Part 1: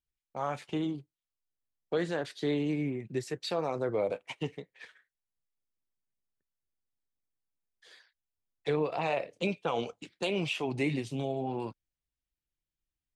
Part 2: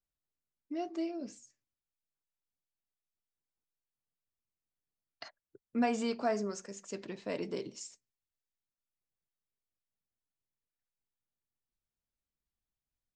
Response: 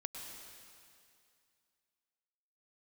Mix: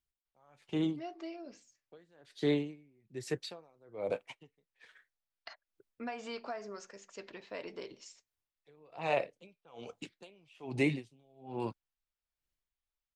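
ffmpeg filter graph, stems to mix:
-filter_complex "[0:a]aeval=exprs='val(0)*pow(10,-35*(0.5-0.5*cos(2*PI*1.2*n/s))/20)':channel_layout=same,volume=1.5dB[link_01];[1:a]lowpass=4200,equalizer=frequency=180:width=0.54:gain=-13.5,acompressor=threshold=-38dB:ratio=6,adelay=250,volume=1dB[link_02];[link_01][link_02]amix=inputs=2:normalize=0"

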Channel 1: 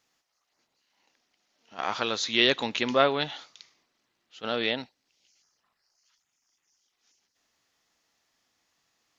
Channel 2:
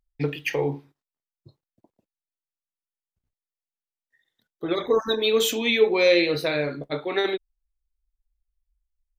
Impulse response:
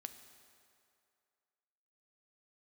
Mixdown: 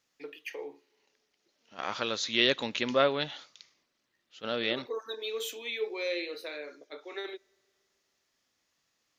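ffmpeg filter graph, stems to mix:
-filter_complex "[0:a]equalizer=frequency=570:width_type=o:width=0.33:gain=5.5,volume=-3dB[link_01];[1:a]highpass=frequency=350:width=0.5412,highpass=frequency=350:width=1.3066,volume=-13.5dB,asplit=2[link_02][link_03];[link_03]volume=-15.5dB[link_04];[2:a]atrim=start_sample=2205[link_05];[link_04][link_05]afir=irnorm=-1:irlink=0[link_06];[link_01][link_02][link_06]amix=inputs=3:normalize=0,equalizer=frequency=740:width=1.5:gain=-5"

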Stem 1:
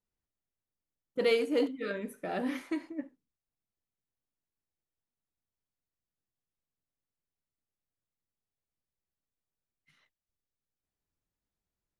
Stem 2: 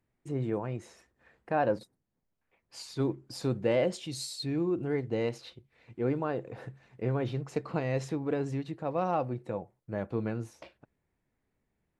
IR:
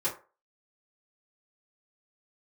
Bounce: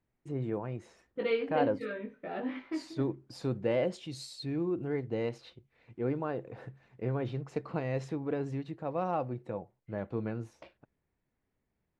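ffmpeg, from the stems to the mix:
-filter_complex "[0:a]lowpass=frequency=3700:width=0.5412,lowpass=frequency=3700:width=1.3066,flanger=delay=17:depth=2.1:speed=0.18,volume=0dB[link_01];[1:a]volume=-2.5dB[link_02];[link_01][link_02]amix=inputs=2:normalize=0,highshelf=frequency=6300:gain=-11"

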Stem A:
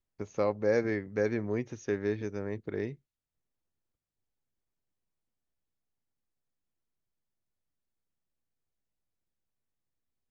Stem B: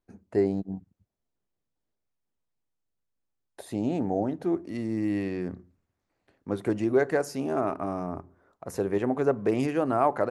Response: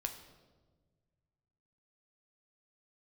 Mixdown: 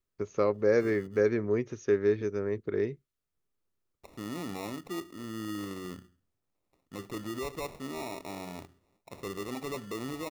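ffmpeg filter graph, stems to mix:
-filter_complex "[0:a]equalizer=frequency=400:width_type=o:width=0.33:gain=7,equalizer=frequency=800:width_type=o:width=0.33:gain=-6,equalizer=frequency=1250:width_type=o:width=0.33:gain=6,volume=0.5dB,asplit=2[link_01][link_02];[1:a]acrusher=samples=28:mix=1:aa=0.000001,alimiter=limit=-21dB:level=0:latency=1:release=17,adelay=450,volume=-8.5dB[link_03];[link_02]apad=whole_len=474105[link_04];[link_03][link_04]sidechaincompress=threshold=-34dB:ratio=8:attack=45:release=870[link_05];[link_01][link_05]amix=inputs=2:normalize=0"

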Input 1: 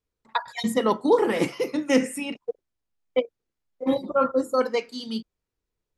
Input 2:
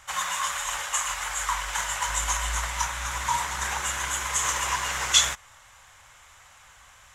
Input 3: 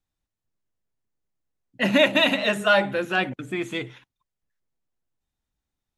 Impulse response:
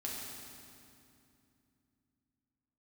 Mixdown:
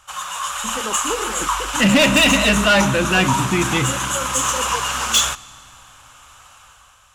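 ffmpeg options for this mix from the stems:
-filter_complex "[0:a]volume=-14dB[link_01];[1:a]equalizer=frequency=1250:width_type=o:width=0.33:gain=6,equalizer=frequency=2000:width_type=o:width=0.33:gain=-11,equalizer=frequency=10000:width_type=o:width=0.33:gain=4,volume=-1.5dB,asplit=2[link_02][link_03];[link_03]volume=-21dB[link_04];[2:a]asubboost=boost=5.5:cutoff=200,volume=0.5dB,asplit=2[link_05][link_06];[link_06]volume=-13.5dB[link_07];[3:a]atrim=start_sample=2205[link_08];[link_04][link_07]amix=inputs=2:normalize=0[link_09];[link_09][link_08]afir=irnorm=-1:irlink=0[link_10];[link_01][link_02][link_05][link_10]amix=inputs=4:normalize=0,equalizer=frequency=2800:width_type=o:width=0.32:gain=5,asoftclip=type=tanh:threshold=-16dB,dynaudnorm=framelen=120:gausssize=9:maxgain=7dB"

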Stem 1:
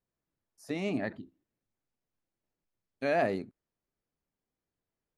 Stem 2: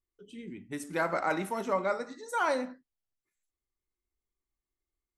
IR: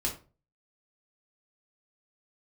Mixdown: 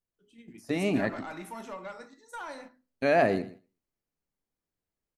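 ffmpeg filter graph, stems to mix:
-filter_complex "[0:a]bandreject=frequency=3500:width=18,dynaudnorm=framelen=120:gausssize=3:maxgain=4.5dB,volume=0.5dB,asplit=2[link_01][link_02];[link_02]volume=-16dB[link_03];[1:a]equalizer=frequency=430:width=0.87:gain=-5,acompressor=threshold=-32dB:ratio=6,asoftclip=type=tanh:threshold=-29dB,volume=-5.5dB,asplit=2[link_04][link_05];[link_05]volume=-9dB[link_06];[2:a]atrim=start_sample=2205[link_07];[link_06][link_07]afir=irnorm=-1:irlink=0[link_08];[link_03]aecho=0:1:120|240|360:1|0.17|0.0289[link_09];[link_01][link_04][link_08][link_09]amix=inputs=4:normalize=0,agate=range=-7dB:threshold=-47dB:ratio=16:detection=peak"

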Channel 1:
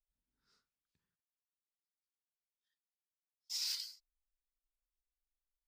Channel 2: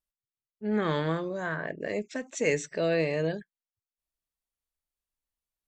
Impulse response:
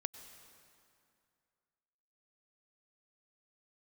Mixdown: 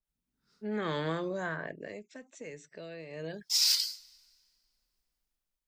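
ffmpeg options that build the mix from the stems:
-filter_complex "[0:a]equalizer=frequency=180:width_type=o:width=1.4:gain=9,volume=-0.5dB,asplit=3[link_01][link_02][link_03];[link_01]atrim=end=1.08,asetpts=PTS-STARTPTS,afade=type=out:start_time=1.076:duration=0.004:curve=hsin[link_04];[link_02]atrim=start=1.08:end=3.29,asetpts=PTS-STARTPTS,volume=0[link_05];[link_03]atrim=start=3.29,asetpts=PTS-STARTPTS,afade=type=in:duration=0.004:curve=hsin[link_06];[link_04][link_05][link_06]concat=n=3:v=0:a=1,asplit=2[link_07][link_08];[link_08]volume=-11dB[link_09];[1:a]acrossover=split=220|1800[link_10][link_11][link_12];[link_10]acompressor=threshold=-41dB:ratio=4[link_13];[link_11]acompressor=threshold=-31dB:ratio=4[link_14];[link_12]acompressor=threshold=-40dB:ratio=4[link_15];[link_13][link_14][link_15]amix=inputs=3:normalize=0,afade=type=out:start_time=1.25:duration=0.78:silence=0.223872,afade=type=in:start_time=3.09:duration=0.25:silence=0.375837[link_16];[2:a]atrim=start_sample=2205[link_17];[link_09][link_17]afir=irnorm=-1:irlink=0[link_18];[link_07][link_16][link_18]amix=inputs=3:normalize=0,dynaudnorm=framelen=200:gausssize=7:maxgain=9dB,adynamicequalizer=threshold=0.00891:dfrequency=3600:dqfactor=0.7:tfrequency=3600:tqfactor=0.7:attack=5:release=100:ratio=0.375:range=1.5:mode=boostabove:tftype=highshelf"

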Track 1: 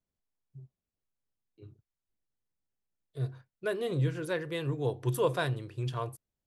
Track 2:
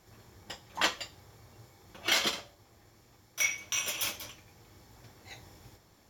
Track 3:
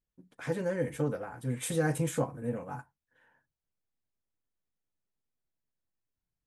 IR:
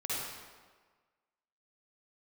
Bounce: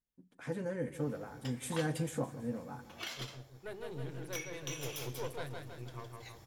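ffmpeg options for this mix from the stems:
-filter_complex "[0:a]highpass=110,aeval=exprs='(tanh(22.4*val(0)+0.75)-tanh(0.75))/22.4':channel_layout=same,volume=-8.5dB,asplit=2[link_01][link_02];[link_02]volume=-4dB[link_03];[1:a]acompressor=threshold=-37dB:ratio=5,adelay=950,volume=-4.5dB[link_04];[2:a]equalizer=frequency=230:width_type=o:width=0.77:gain=5,volume=-7dB,asplit=2[link_05][link_06];[link_06]volume=-16dB[link_07];[link_03][link_07]amix=inputs=2:normalize=0,aecho=0:1:161|322|483|644|805|966|1127|1288:1|0.53|0.281|0.149|0.0789|0.0418|0.0222|0.0117[link_08];[link_01][link_04][link_05][link_08]amix=inputs=4:normalize=0"

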